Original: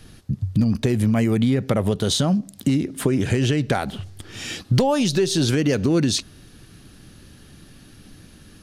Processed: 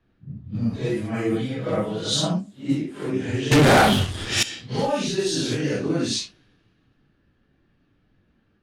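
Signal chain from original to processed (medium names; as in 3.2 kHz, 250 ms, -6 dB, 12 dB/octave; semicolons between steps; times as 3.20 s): phase randomisation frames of 200 ms; bass shelf 150 Hz -8.5 dB; 3.51–4.43 s: waveshaping leveller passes 5; level-controlled noise filter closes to 2.2 kHz, open at -15 dBFS; 0.80–2.41 s: comb 6.2 ms, depth 71%; three bands expanded up and down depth 40%; trim -2.5 dB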